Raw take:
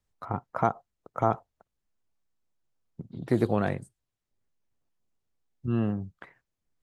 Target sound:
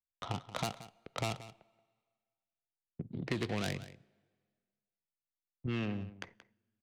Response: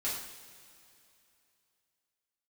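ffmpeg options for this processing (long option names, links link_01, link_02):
-filter_complex "[0:a]adynamicsmooth=sensitivity=6:basefreq=740,aeval=exprs='0.355*(cos(1*acos(clip(val(0)/0.355,-1,1)))-cos(1*PI/2))+0.0398*(cos(5*acos(clip(val(0)/0.355,-1,1)))-cos(5*PI/2))':channel_layout=same,agate=range=-27dB:threshold=-55dB:ratio=16:detection=peak,asplit=2[link_01][link_02];[link_02]highpass=110[link_03];[1:a]atrim=start_sample=2205,asetrate=74970,aresample=44100[link_04];[link_03][link_04]afir=irnorm=-1:irlink=0,volume=-23.5dB[link_05];[link_01][link_05]amix=inputs=2:normalize=0,acrossover=split=300|930|4300[link_06][link_07][link_08][link_09];[link_06]acompressor=threshold=-35dB:ratio=4[link_10];[link_07]acompressor=threshold=-39dB:ratio=4[link_11];[link_08]acompressor=threshold=-41dB:ratio=4[link_12];[link_09]acompressor=threshold=-47dB:ratio=4[link_13];[link_10][link_11][link_12][link_13]amix=inputs=4:normalize=0,highshelf=frequency=1800:width_type=q:width=1.5:gain=9,aecho=1:1:178:0.168,volume=-2.5dB"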